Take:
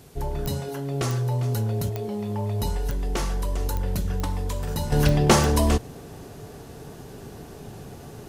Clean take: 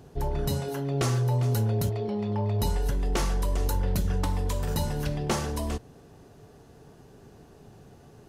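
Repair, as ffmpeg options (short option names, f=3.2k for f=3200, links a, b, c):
-af "adeclick=t=4,agate=range=-21dB:threshold=-34dB,asetnsamples=n=441:p=0,asendcmd='4.92 volume volume -10.5dB',volume=0dB"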